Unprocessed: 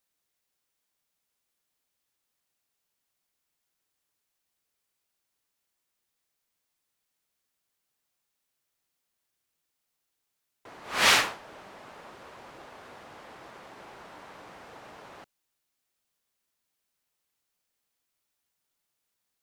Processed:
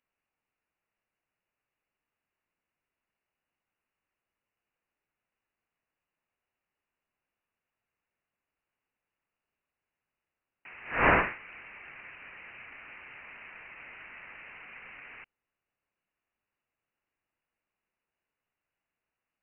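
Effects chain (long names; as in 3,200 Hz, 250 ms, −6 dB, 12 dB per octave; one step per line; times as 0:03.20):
voice inversion scrambler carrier 2,900 Hz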